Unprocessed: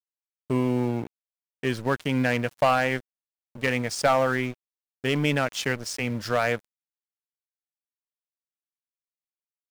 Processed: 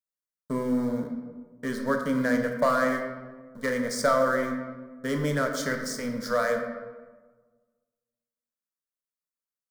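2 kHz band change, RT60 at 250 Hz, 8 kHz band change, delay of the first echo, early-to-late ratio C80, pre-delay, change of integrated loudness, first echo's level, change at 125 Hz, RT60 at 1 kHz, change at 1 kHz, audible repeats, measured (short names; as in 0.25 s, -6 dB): -2.5 dB, 1.6 s, -1.0 dB, none, 7.5 dB, 17 ms, -1.5 dB, none, -6.5 dB, 1.3 s, -2.0 dB, none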